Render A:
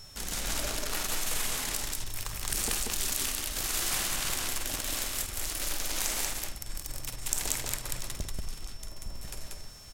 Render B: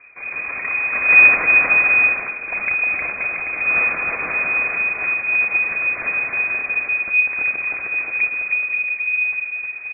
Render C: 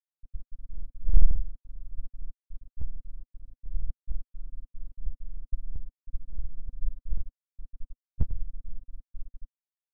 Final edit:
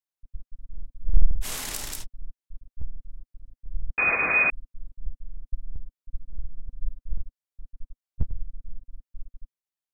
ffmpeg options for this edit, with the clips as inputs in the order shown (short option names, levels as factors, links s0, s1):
-filter_complex "[2:a]asplit=3[s0][s1][s2];[s0]atrim=end=1.47[s3];[0:a]atrim=start=1.41:end=2.06[s4];[s1]atrim=start=2:end=3.982[s5];[1:a]atrim=start=3.978:end=4.502[s6];[s2]atrim=start=4.498[s7];[s3][s4]acrossfade=d=0.06:c1=tri:c2=tri[s8];[s8][s5]acrossfade=d=0.06:c1=tri:c2=tri[s9];[s9][s6]acrossfade=d=0.004:c1=hsin:c2=hsin[s10];[s10][s7]acrossfade=d=0.004:c1=hsin:c2=hsin"